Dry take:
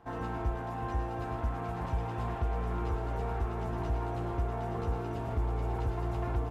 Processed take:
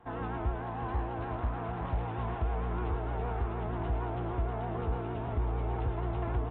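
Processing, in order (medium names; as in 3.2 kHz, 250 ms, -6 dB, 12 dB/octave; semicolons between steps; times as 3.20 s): vibrato 6.5 Hz 75 cents; resampled via 8 kHz; 0.63–2.03 s: loudspeaker Doppler distortion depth 0.31 ms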